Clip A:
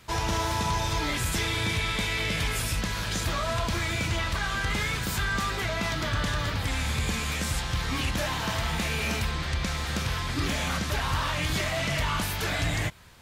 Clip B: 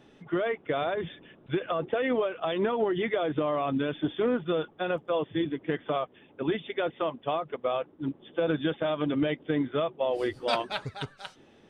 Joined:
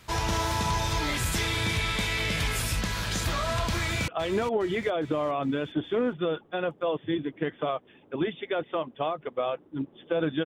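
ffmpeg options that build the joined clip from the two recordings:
-filter_complex "[0:a]apad=whole_dur=10.45,atrim=end=10.45,atrim=end=4.082[s0];[1:a]atrim=start=2.348:end=8.72[s1];[s0][s1]acrossfade=d=0.004:c1=hsin:c2=hsin,asplit=2[s2][s3];[s3]afade=t=in:st=3.78:d=0.01,afade=t=out:st=4.08:d=0.01,aecho=0:1:410|820|1230|1640|2050:0.281838|0.140919|0.0704596|0.0352298|0.0176149[s4];[s2][s4]amix=inputs=2:normalize=0"

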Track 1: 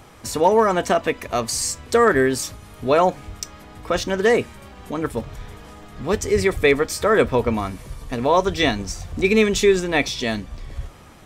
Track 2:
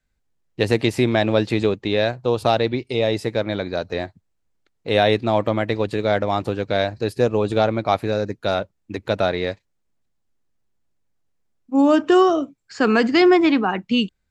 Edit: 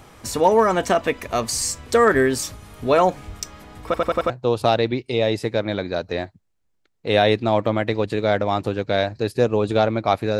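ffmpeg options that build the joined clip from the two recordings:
-filter_complex "[0:a]apad=whole_dur=10.39,atrim=end=10.39,asplit=5[s0][s1][s2][s3][s4];[s0]atrim=end=3.942[s5];[s1]atrim=start=3.848:end=3.942[s6];[s2]atrim=start=3.848:end=3.942[s7];[s3]atrim=start=3.848:end=3.942[s8];[s4]atrim=start=3.848:end=3.942[s9];[1:a]atrim=start=2.108:end=8.2[s10];[s5][s6]acrossfade=d=0.004:c1=hsin:c2=hsin[s11];[s11][s7]acrossfade=d=0.004:c1=hsin:c2=hsin[s12];[s12][s8]acrossfade=d=0.004:c1=hsin:c2=hsin[s13];[s13][s9]acrossfade=d=0.004:c1=hsin:c2=hsin[s14];[s14][s10]acrossfade=d=0.004:c1=hsin:c2=hsin"

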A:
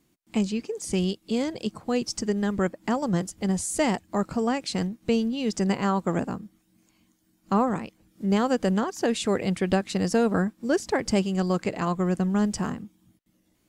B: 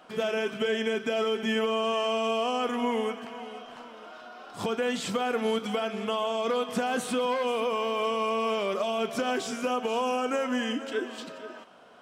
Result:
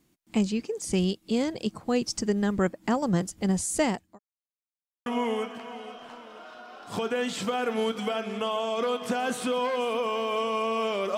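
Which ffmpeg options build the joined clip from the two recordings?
-filter_complex "[0:a]apad=whole_dur=11.17,atrim=end=11.17,asplit=2[s0][s1];[s0]atrim=end=4.19,asetpts=PTS-STARTPTS,afade=t=out:st=3.78:d=0.41[s2];[s1]atrim=start=4.19:end=5.06,asetpts=PTS-STARTPTS,volume=0[s3];[1:a]atrim=start=2.73:end=8.84,asetpts=PTS-STARTPTS,afade=t=in:d=0.004:c=hsin[s4];[s2][s3][s4]concat=n=3:v=0:a=1"

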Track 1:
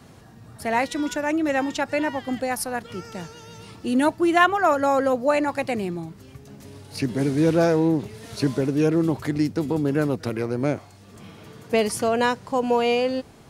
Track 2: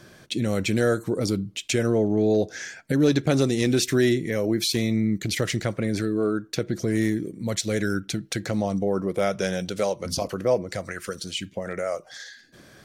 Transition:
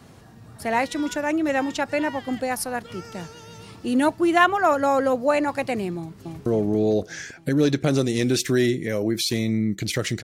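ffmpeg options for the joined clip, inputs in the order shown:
-filter_complex "[0:a]apad=whole_dur=10.23,atrim=end=10.23,atrim=end=6.462[s0];[1:a]atrim=start=1.888:end=5.66[s1];[s0][s1]acrossfade=d=0.004:c1=hsin:c2=hsin,asplit=2[s2][s3];[s3]afade=t=in:st=5.97:d=0.01,afade=t=out:st=6.46:d=0.01,aecho=0:1:280|560|840|1120|1400|1680|1960|2240|2520:0.794328|0.476597|0.285958|0.171575|0.102945|0.061767|0.0370602|0.0222361|0.0133417[s4];[s2][s4]amix=inputs=2:normalize=0"

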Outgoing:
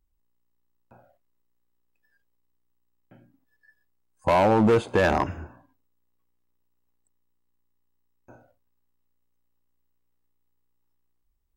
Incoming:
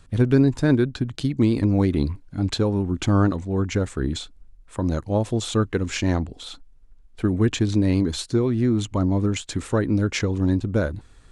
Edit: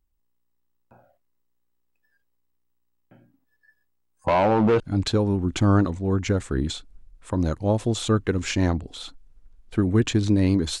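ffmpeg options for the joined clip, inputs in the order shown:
-filter_complex "[0:a]asettb=1/sr,asplit=3[s0][s1][s2];[s0]atrim=end=4.264[s3];[s1]atrim=start=4.26:end=4.8,asetpts=PTS-STARTPTS,afade=t=in:d=0.004:c=qsin,afade=t=out:st=0.536:d=0.004:c=qsin,lowpass=4700[s4];[s2]atrim=start=4.796[s5];[s3][s4]acrossfade=d=0.004:c1=hsin:c2=qsin[s6];[s6][s5]acrossfade=d=0.004:c1=qsin:c2=hsin,apad=whole_dur=10.8,atrim=end=10.8,atrim=end=4.802[s7];[1:a]atrim=start=2.258:end=8.26[s8];[s7][s8]acrossfade=d=0.004:c1=hsin:c2=hsin"

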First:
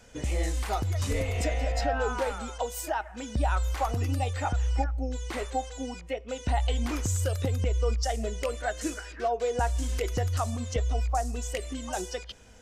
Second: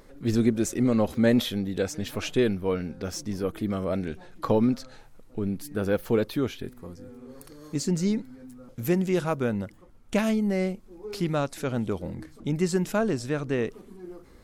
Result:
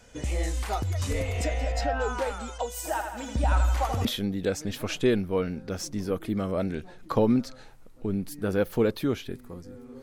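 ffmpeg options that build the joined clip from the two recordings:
-filter_complex "[0:a]asplit=3[s0][s1][s2];[s0]afade=t=out:st=2.84:d=0.02[s3];[s1]aecho=1:1:82|164|246|328|410|492|574:0.501|0.286|0.163|0.0928|0.0529|0.0302|0.0172,afade=t=in:st=2.84:d=0.02,afade=t=out:st=4.05:d=0.02[s4];[s2]afade=t=in:st=4.05:d=0.02[s5];[s3][s4][s5]amix=inputs=3:normalize=0,apad=whole_dur=10.02,atrim=end=10.02,atrim=end=4.052[s6];[1:a]atrim=start=1.378:end=7.35[s7];[s6][s7]acrossfade=d=0.004:c1=hsin:c2=hsin"

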